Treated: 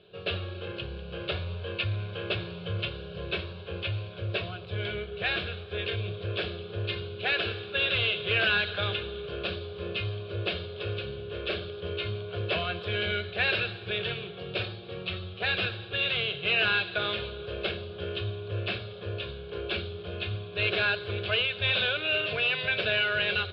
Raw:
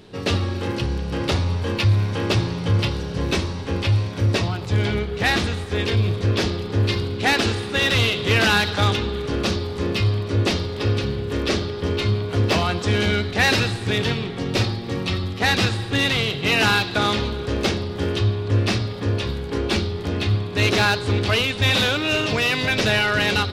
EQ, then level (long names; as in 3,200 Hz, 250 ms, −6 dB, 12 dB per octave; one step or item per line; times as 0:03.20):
dynamic equaliser 1,900 Hz, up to +7 dB, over −38 dBFS, Q 2.2
loudspeaker in its box 110–3,700 Hz, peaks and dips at 120 Hz −10 dB, 260 Hz −10 dB, 500 Hz −4 dB, 1,200 Hz −10 dB
phaser with its sweep stopped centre 1,300 Hz, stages 8
−4.5 dB